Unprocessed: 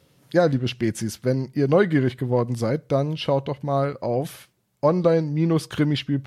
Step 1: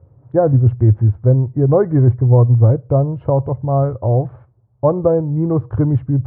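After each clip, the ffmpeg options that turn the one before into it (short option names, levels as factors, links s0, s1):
-af "lowpass=f=1000:w=0.5412,lowpass=f=1000:w=1.3066,lowshelf=f=140:t=q:w=3:g=9.5,volume=1.88"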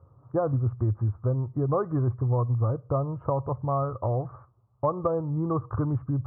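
-af "lowpass=f=1200:t=q:w=8.6,acompressor=threshold=0.158:ratio=2.5,volume=0.376"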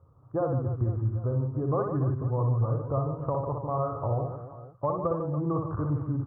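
-af "aecho=1:1:60|150|285|487.5|791.2:0.631|0.398|0.251|0.158|0.1,volume=0.668"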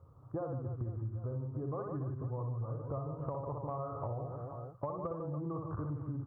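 -af "acompressor=threshold=0.0158:ratio=6"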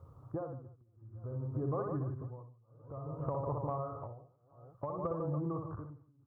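-af "tremolo=f=0.57:d=0.98,volume=1.5"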